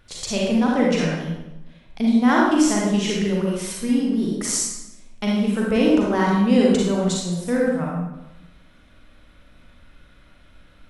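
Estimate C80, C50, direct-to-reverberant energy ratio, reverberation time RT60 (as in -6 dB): 2.0 dB, -1.5 dB, -4.0 dB, 1.0 s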